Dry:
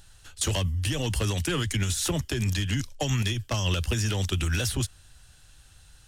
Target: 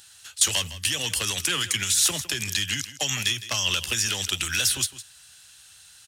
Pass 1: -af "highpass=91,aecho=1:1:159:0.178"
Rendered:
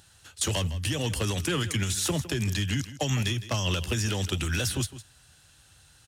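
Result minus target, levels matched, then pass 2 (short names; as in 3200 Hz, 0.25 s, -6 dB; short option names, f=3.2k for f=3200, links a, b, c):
1000 Hz band +4.5 dB
-af "highpass=91,tiltshelf=f=1k:g=-9.5,aecho=1:1:159:0.178"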